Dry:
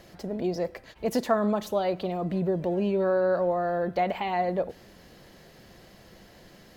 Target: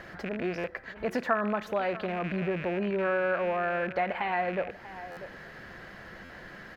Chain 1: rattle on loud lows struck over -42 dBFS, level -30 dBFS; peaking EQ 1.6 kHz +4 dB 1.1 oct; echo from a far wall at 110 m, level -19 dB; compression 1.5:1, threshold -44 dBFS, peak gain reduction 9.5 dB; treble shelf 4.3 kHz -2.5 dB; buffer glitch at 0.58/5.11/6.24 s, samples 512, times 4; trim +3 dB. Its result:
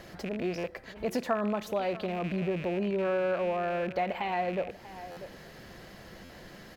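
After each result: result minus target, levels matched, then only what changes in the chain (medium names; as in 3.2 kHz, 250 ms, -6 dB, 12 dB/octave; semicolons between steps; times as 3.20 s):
8 kHz band +8.0 dB; 2 kHz band -5.0 dB
change: treble shelf 4.3 kHz -12 dB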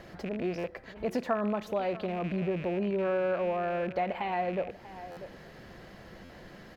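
2 kHz band -6.5 dB
change: peaking EQ 1.6 kHz +15 dB 1.1 oct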